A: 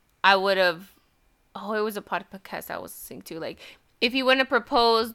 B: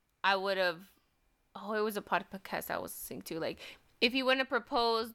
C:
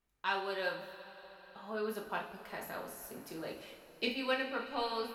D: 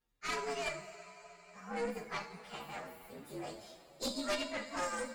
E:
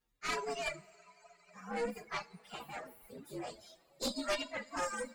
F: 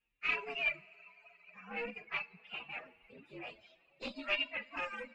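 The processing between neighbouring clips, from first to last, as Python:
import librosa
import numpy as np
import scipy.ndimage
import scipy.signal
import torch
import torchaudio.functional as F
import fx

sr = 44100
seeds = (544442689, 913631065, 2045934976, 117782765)

y1 = fx.rider(x, sr, range_db=5, speed_s=0.5)
y1 = y1 * 10.0 ** (-8.0 / 20.0)
y2 = fx.rev_double_slope(y1, sr, seeds[0], early_s=0.37, late_s=4.7, knee_db=-18, drr_db=-1.5)
y2 = y2 * 10.0 ** (-9.0 / 20.0)
y3 = fx.partial_stretch(y2, sr, pct=121)
y3 = fx.cheby_harmonics(y3, sr, harmonics=(4, 5), levels_db=(-7, -13), full_scale_db=-22.5)
y3 = y3 * 10.0 ** (-4.5 / 20.0)
y4 = fx.dereverb_blind(y3, sr, rt60_s=1.8)
y4 = y4 * 10.0 ** (1.5 / 20.0)
y5 = fx.lowpass_res(y4, sr, hz=2600.0, q=12.0)
y5 = y5 * 10.0 ** (-6.5 / 20.0)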